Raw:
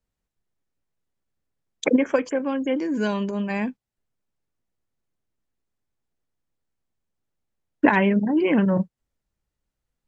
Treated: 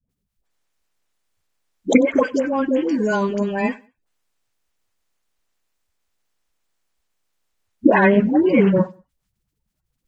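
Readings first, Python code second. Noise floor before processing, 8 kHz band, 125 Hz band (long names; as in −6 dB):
−85 dBFS, can't be measured, +3.5 dB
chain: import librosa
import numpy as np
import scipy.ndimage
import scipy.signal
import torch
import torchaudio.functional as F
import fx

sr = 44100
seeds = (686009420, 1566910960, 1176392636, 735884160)

p1 = fx.spec_quant(x, sr, step_db=30)
p2 = fx.dynamic_eq(p1, sr, hz=3100.0, q=0.75, threshold_db=-40.0, ratio=4.0, max_db=-4)
p3 = fx.dispersion(p2, sr, late='highs', ms=94.0, hz=630.0)
p4 = p3 + fx.echo_feedback(p3, sr, ms=94, feedback_pct=28, wet_db=-24, dry=0)
y = F.gain(torch.from_numpy(p4), 5.5).numpy()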